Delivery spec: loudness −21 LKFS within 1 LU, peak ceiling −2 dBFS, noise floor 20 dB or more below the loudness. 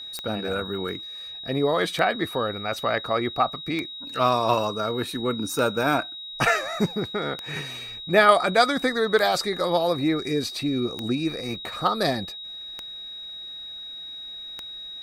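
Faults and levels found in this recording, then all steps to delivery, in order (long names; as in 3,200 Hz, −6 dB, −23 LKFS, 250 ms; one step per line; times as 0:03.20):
number of clicks 9; interfering tone 3,800 Hz; level of the tone −35 dBFS; integrated loudness −25.0 LKFS; sample peak −4.0 dBFS; target loudness −21.0 LKFS
→ click removal
notch filter 3,800 Hz, Q 30
level +4 dB
brickwall limiter −2 dBFS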